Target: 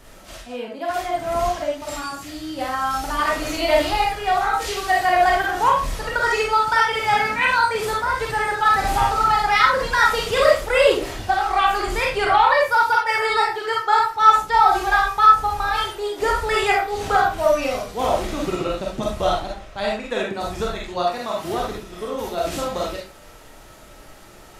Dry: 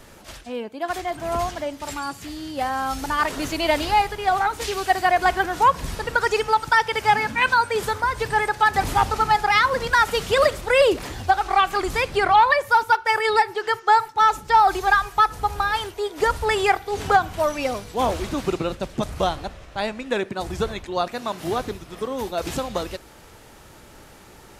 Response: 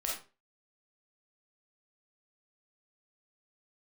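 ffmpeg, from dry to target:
-filter_complex "[1:a]atrim=start_sample=2205[a];[0:a][a]afir=irnorm=-1:irlink=0,volume=-1.5dB"

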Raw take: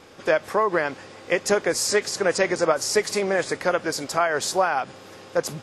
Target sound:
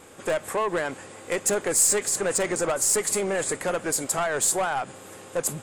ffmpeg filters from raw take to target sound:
-af "aeval=exprs='(tanh(10*val(0)+0.2)-tanh(0.2))/10':c=same,highshelf=f=6.5k:t=q:w=3:g=7"

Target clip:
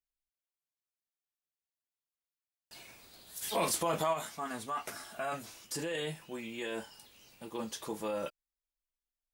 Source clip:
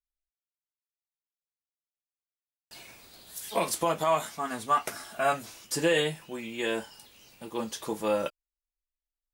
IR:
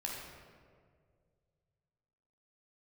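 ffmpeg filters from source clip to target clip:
-filter_complex "[0:a]alimiter=limit=-24dB:level=0:latency=1:release=15,asplit=3[a][b][c];[a]afade=t=out:st=3.41:d=0.02[d];[b]acontrast=74,afade=t=in:st=3.41:d=0.02,afade=t=out:st=4.12:d=0.02[e];[c]afade=t=in:st=4.12:d=0.02[f];[d][e][f]amix=inputs=3:normalize=0,volume=-4dB"

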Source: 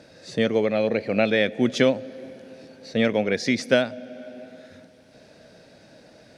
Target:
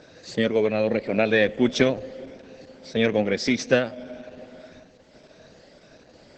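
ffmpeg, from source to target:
-af "afftfilt=real='re*pow(10,7/40*sin(2*PI*(1.6*log(max(b,1)*sr/1024/100)/log(2)-(1.7)*(pts-256)/sr)))':imag='im*pow(10,7/40*sin(2*PI*(1.6*log(max(b,1)*sr/1024/100)/log(2)-(1.7)*(pts-256)/sr)))':win_size=1024:overlap=0.75" -ar 48000 -c:a libopus -b:a 10k

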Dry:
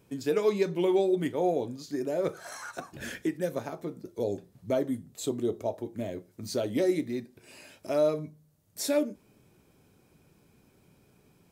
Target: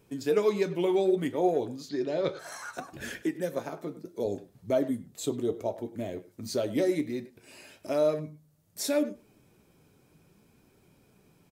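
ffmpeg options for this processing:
-filter_complex "[0:a]asettb=1/sr,asplit=3[a][b][c];[a]atrim=end=3.224[d];[b]atrim=start=3.22:end=4.26,asetpts=PTS-STARTPTS,afade=t=in:d=0.004:c=qsin,afade=t=out:st=1.036:d=0.004:c=qsin,highpass=140[e];[c]atrim=start=4.256[f];[d][e]acrossfade=d=0.004:c1=hsin:c2=qsin[g];[g][f]acrossfade=d=0.004:c1=qsin:c2=hsin,flanger=delay=2.1:depth=5.4:regen=73:speed=0.65:shape=triangular,asettb=1/sr,asplit=3[h][i][j];[h]atrim=end=1.894[k];[i]atrim=start=1.89:end=2.39,asetpts=PTS-STARTPTS,afade=t=in:d=0.004:c=qsin,afade=t=out:st=0.496:d=0.004:c=qsin,lowpass=f=4k:t=q:w=3.5[l];[j]atrim=start=2.386[m];[k][l]acrossfade=d=0.004:c1=hsin:c2=qsin[n];[n][m]acrossfade=d=0.004:c1=qsin:c2=hsin,asplit=2[o][p];[p]adelay=100,highpass=300,lowpass=3.4k,asoftclip=type=hard:threshold=-26dB,volume=-16dB[q];[o][q]amix=inputs=2:normalize=0,volume=4.5dB"

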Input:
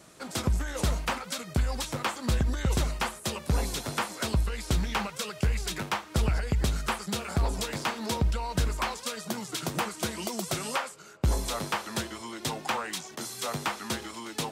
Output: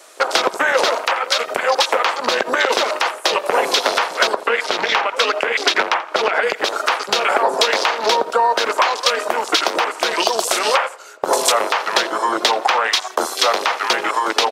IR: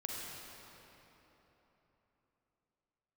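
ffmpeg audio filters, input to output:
-filter_complex "[0:a]highpass=f=440:w=0.5412,highpass=f=440:w=1.3066,afwtdn=0.00891,asettb=1/sr,asplit=3[a][b][c];[a]atrim=end=4.354[d];[b]atrim=start=4.35:end=6.43,asetpts=PTS-STARTPTS,afade=t=in:d=0.004:c=qsin,afade=t=out:st=2.076:d=0.004:c=qsin,highshelf=f=6.6k:g=-10[e];[c]atrim=start=6.426[f];[d][e]acrossfade=d=0.004:c1=hsin:c2=qsin[g];[g][f]acrossfade=d=0.004:c1=qsin:c2=hsin,acompressor=threshold=-40dB:ratio=6,asplit=2[h][i];[i]adelay=85,lowpass=f=2.6k:p=1,volume=-18dB,asplit=2[j][k];[k]adelay=85,lowpass=f=2.6k:p=1,volume=0.43,asplit=2[l][m];[m]adelay=85,lowpass=f=2.6k:p=1,volume=0.43,asplit=2[n][o];[o]adelay=85,lowpass=f=2.6k:p=1,volume=0.43[p];[h][j][l][n][p]amix=inputs=5:normalize=0,alimiter=level_in=28.5dB:limit=-1dB:release=50:level=0:latency=1,volume=-1dB"

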